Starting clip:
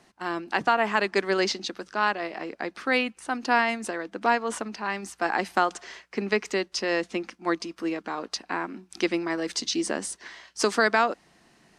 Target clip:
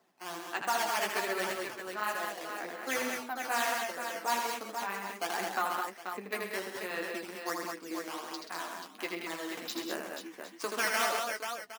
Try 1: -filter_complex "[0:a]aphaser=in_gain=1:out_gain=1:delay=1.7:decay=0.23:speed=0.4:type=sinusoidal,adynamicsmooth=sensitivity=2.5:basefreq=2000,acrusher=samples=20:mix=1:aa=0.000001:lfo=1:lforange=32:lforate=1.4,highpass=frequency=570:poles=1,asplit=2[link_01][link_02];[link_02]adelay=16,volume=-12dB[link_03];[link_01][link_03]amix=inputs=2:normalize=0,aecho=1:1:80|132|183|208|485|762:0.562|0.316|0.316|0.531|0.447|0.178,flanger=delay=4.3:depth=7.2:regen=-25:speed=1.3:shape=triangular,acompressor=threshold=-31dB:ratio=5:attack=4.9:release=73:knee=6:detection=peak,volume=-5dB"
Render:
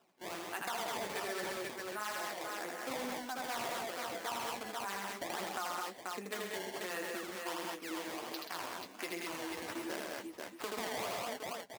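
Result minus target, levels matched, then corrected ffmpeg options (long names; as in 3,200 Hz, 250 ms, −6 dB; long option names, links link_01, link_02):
downward compressor: peak gain reduction +10.5 dB; sample-and-hold swept by an LFO: distortion +9 dB
-filter_complex "[0:a]aphaser=in_gain=1:out_gain=1:delay=1.7:decay=0.23:speed=0.4:type=sinusoidal,adynamicsmooth=sensitivity=2.5:basefreq=2000,acrusher=samples=7:mix=1:aa=0.000001:lfo=1:lforange=11.2:lforate=1.4,highpass=frequency=570:poles=1,asplit=2[link_01][link_02];[link_02]adelay=16,volume=-12dB[link_03];[link_01][link_03]amix=inputs=2:normalize=0,aecho=1:1:80|132|183|208|485|762:0.562|0.316|0.316|0.531|0.447|0.178,flanger=delay=4.3:depth=7.2:regen=-25:speed=1.3:shape=triangular,volume=-5dB"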